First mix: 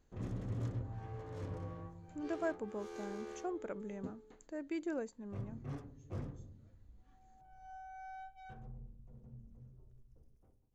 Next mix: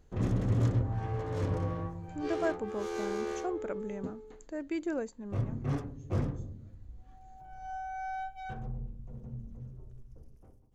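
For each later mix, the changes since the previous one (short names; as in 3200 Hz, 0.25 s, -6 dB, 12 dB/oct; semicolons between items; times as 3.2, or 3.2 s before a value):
speech +5.0 dB; background +11.5 dB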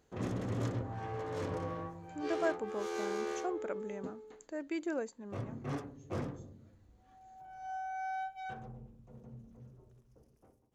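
master: add HPF 330 Hz 6 dB/oct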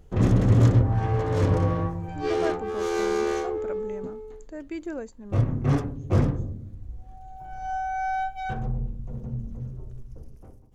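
background +10.0 dB; master: remove HPF 330 Hz 6 dB/oct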